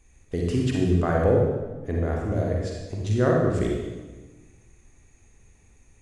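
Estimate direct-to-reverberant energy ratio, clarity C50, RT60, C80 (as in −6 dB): −2.0 dB, −0.5 dB, 1.3 s, 2.5 dB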